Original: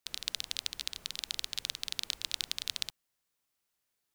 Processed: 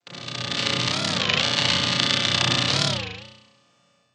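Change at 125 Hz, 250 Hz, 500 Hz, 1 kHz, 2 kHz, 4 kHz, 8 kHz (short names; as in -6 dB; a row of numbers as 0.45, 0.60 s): +33.5, +32.5, +30.5, +26.5, +20.0, +14.5, +10.0 dB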